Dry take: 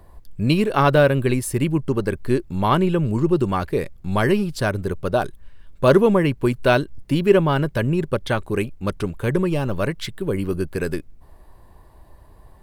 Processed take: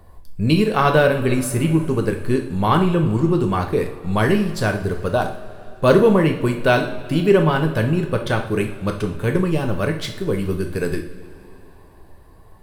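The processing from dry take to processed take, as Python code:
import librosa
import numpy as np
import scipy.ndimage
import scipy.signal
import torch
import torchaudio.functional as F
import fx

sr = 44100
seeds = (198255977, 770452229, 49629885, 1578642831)

y = fx.rev_double_slope(x, sr, seeds[0], early_s=0.51, late_s=3.5, knee_db=-18, drr_db=3.5)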